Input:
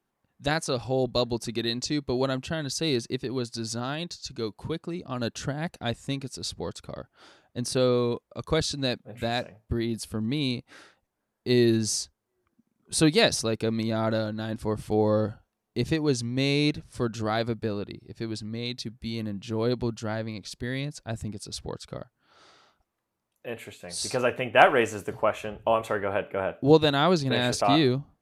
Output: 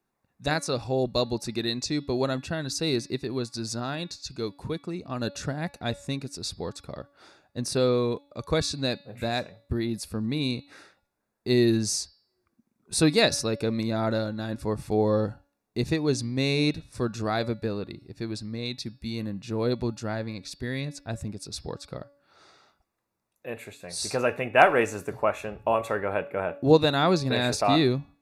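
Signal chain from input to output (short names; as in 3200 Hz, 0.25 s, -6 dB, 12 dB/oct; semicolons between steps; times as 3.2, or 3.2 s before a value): Butterworth band-stop 3100 Hz, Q 7.3; de-hum 284.1 Hz, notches 19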